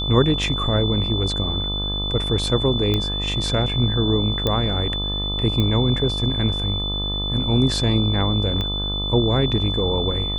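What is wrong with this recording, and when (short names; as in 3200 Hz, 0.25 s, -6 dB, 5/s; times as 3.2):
buzz 50 Hz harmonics 26 -27 dBFS
tone 3500 Hz -25 dBFS
2.94 pop -9 dBFS
4.47 pop -8 dBFS
5.6 pop -11 dBFS
8.61 pop -13 dBFS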